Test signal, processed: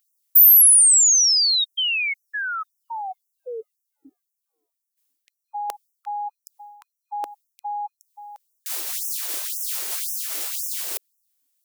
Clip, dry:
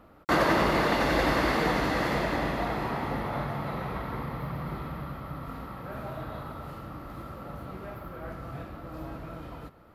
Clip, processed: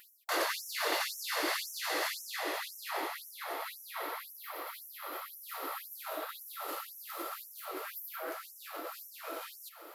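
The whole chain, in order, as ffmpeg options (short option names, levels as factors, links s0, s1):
-af "lowshelf=f=430:g=11.5,areverse,acompressor=threshold=0.0251:ratio=5,areverse,aeval=exprs='val(0)+0.00355*(sin(2*PI*50*n/s)+sin(2*PI*2*50*n/s)/2+sin(2*PI*3*50*n/s)/3+sin(2*PI*4*50*n/s)/4+sin(2*PI*5*50*n/s)/5)':c=same,crystalizer=i=7.5:c=0,afftfilt=real='re*gte(b*sr/1024,290*pow(5500/290,0.5+0.5*sin(2*PI*1.9*pts/sr)))':imag='im*gte(b*sr/1024,290*pow(5500/290,0.5+0.5*sin(2*PI*1.9*pts/sr)))':win_size=1024:overlap=0.75,volume=1.12"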